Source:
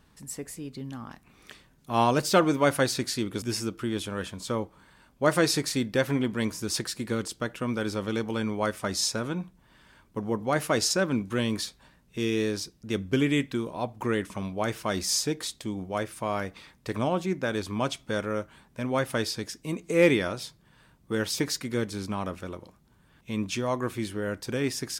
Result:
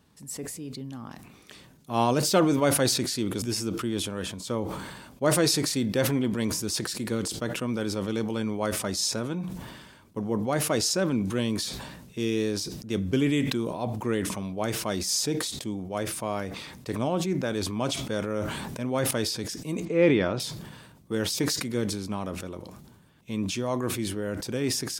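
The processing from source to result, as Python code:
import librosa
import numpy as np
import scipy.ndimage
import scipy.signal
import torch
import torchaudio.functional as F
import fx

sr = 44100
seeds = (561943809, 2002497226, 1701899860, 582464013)

y = fx.sustainer(x, sr, db_per_s=25.0, at=(18.36, 19.11))
y = fx.lowpass(y, sr, hz=3000.0, slope=12, at=(19.85, 20.4))
y = scipy.signal.sosfilt(scipy.signal.butter(2, 80.0, 'highpass', fs=sr, output='sos'), y)
y = fx.peak_eq(y, sr, hz=1600.0, db=-5.0, octaves=1.6)
y = fx.sustainer(y, sr, db_per_s=41.0)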